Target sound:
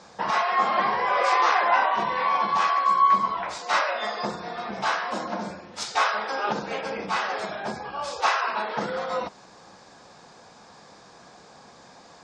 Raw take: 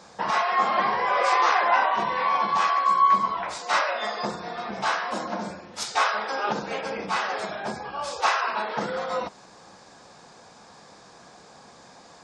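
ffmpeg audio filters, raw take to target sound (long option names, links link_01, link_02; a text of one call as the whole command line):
ffmpeg -i in.wav -af "lowpass=7800" out.wav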